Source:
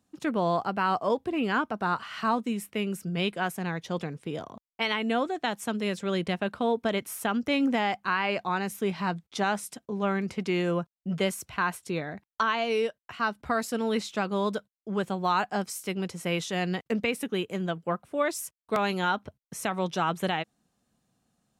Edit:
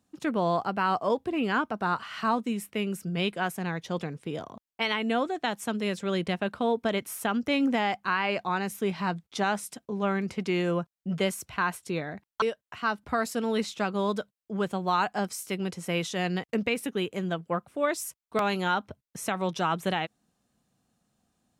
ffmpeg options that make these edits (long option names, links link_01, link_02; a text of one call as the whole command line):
ffmpeg -i in.wav -filter_complex "[0:a]asplit=2[link_01][link_02];[link_01]atrim=end=12.422[link_03];[link_02]atrim=start=12.788[link_04];[link_03][link_04]acrossfade=duration=0.004:curve1=hsin:curve2=hsin" out.wav